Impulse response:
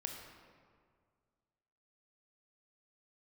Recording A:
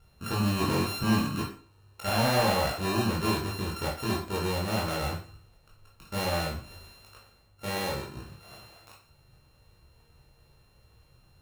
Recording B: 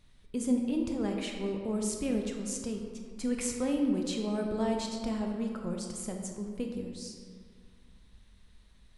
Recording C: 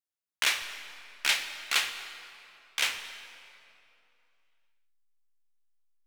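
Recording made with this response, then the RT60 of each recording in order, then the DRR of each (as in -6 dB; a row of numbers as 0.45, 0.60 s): B; 0.40, 1.9, 2.7 s; -4.5, 2.0, 8.0 dB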